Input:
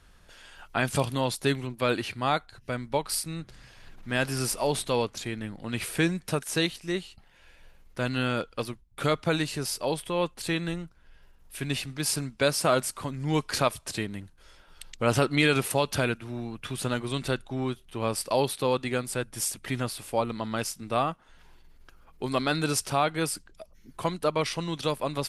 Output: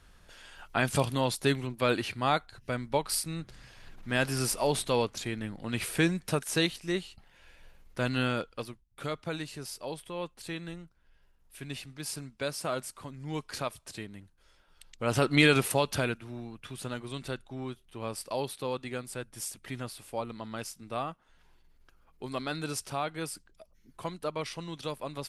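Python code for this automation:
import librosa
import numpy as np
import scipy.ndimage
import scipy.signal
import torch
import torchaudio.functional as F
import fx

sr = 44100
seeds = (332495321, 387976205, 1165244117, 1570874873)

y = fx.gain(x, sr, db=fx.line((8.23, -1.0), (8.86, -9.5), (14.89, -9.5), (15.38, 1.5), (16.66, -8.0)))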